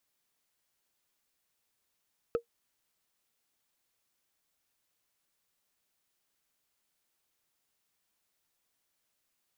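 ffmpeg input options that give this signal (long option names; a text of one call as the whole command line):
ffmpeg -f lavfi -i "aevalsrc='0.0944*pow(10,-3*t/0.1)*sin(2*PI*468*t)+0.0299*pow(10,-3*t/0.03)*sin(2*PI*1290.3*t)+0.00944*pow(10,-3*t/0.013)*sin(2*PI*2529.1*t)+0.00299*pow(10,-3*t/0.007)*sin(2*PI*4180.6*t)+0.000944*pow(10,-3*t/0.004)*sin(2*PI*6243.1*t)':duration=0.45:sample_rate=44100" out.wav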